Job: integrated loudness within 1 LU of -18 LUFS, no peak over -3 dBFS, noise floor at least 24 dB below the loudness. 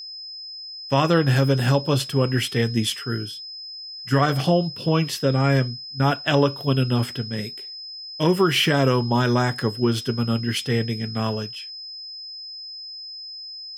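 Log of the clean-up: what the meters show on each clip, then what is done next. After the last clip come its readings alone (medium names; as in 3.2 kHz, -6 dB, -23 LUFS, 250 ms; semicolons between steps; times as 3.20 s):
steady tone 5.1 kHz; tone level -34 dBFS; loudness -22.0 LUFS; peak level -5.5 dBFS; loudness target -18.0 LUFS
-> band-stop 5.1 kHz, Q 30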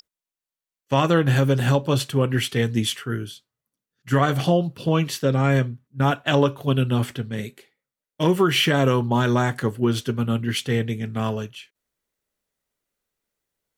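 steady tone not found; loudness -22.0 LUFS; peak level -5.0 dBFS; loudness target -18.0 LUFS
-> trim +4 dB; peak limiter -3 dBFS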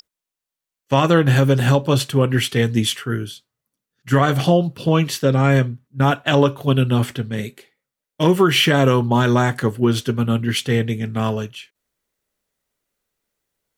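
loudness -18.0 LUFS; peak level -3.0 dBFS; noise floor -86 dBFS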